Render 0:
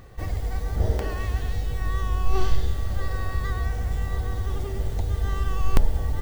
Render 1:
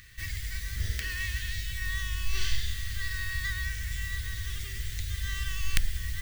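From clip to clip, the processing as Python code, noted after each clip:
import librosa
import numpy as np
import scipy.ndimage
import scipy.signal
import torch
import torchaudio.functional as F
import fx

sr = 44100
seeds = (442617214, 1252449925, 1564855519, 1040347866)

y = fx.curve_eq(x, sr, hz=(110.0, 820.0, 1800.0), db=(0, -22, 15))
y = y * 10.0 ** (-8.5 / 20.0)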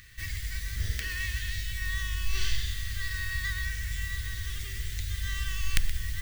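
y = x + 10.0 ** (-14.0 / 20.0) * np.pad(x, (int(124 * sr / 1000.0), 0))[:len(x)]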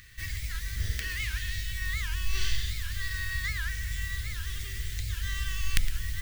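y = fx.record_warp(x, sr, rpm=78.0, depth_cents=250.0)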